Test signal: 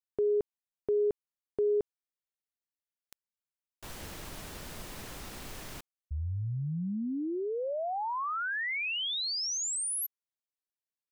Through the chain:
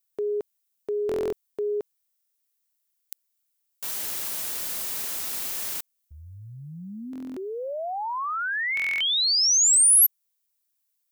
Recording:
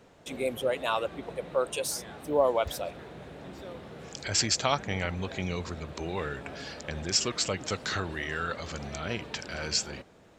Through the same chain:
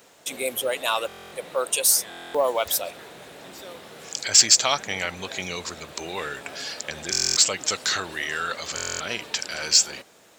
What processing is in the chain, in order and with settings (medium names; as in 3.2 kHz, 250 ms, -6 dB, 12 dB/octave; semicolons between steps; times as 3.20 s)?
RIAA curve recording; in parallel at -10 dB: hard clipper -20.5 dBFS; on the sum: buffer glitch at 1.07/2.09/7.11/8.75 s, samples 1024, times 10; trim +1.5 dB